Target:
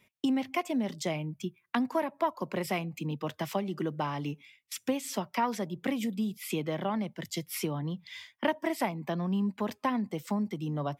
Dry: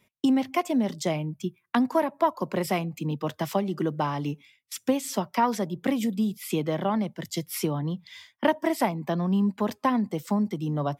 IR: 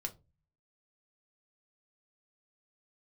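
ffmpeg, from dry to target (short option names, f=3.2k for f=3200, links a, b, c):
-filter_complex "[0:a]equalizer=f=2.4k:w=1.5:g=4.5,asplit=2[a][b];[b]acompressor=threshold=-36dB:ratio=6,volume=0dB[c];[a][c]amix=inputs=2:normalize=0,volume=-7.5dB"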